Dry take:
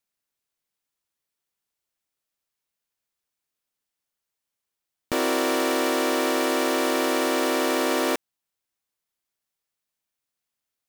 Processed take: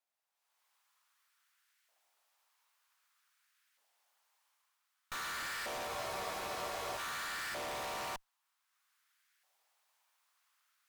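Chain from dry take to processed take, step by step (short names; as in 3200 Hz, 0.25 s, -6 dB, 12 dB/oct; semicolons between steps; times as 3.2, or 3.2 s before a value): LFO high-pass saw up 0.53 Hz 670–1700 Hz; AGC gain up to 15 dB; high shelf 5400 Hz -5 dB; tube stage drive 40 dB, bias 0.8; spectral freeze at 5.89, 1.09 s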